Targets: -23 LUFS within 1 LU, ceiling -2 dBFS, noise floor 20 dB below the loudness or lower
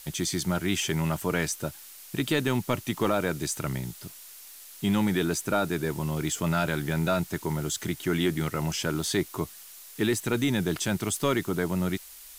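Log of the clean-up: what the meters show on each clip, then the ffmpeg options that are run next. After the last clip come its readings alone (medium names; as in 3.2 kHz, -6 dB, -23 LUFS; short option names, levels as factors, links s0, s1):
noise floor -47 dBFS; noise floor target -49 dBFS; loudness -28.5 LUFS; peak level -12.0 dBFS; loudness target -23.0 LUFS
-> -af "afftdn=nr=6:nf=-47"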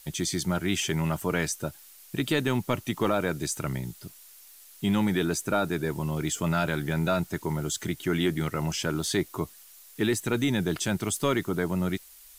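noise floor -52 dBFS; loudness -28.5 LUFS; peak level -12.5 dBFS; loudness target -23.0 LUFS
-> -af "volume=1.88"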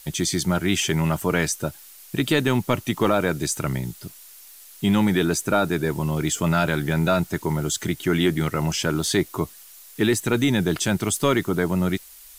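loudness -23.0 LUFS; peak level -7.0 dBFS; noise floor -46 dBFS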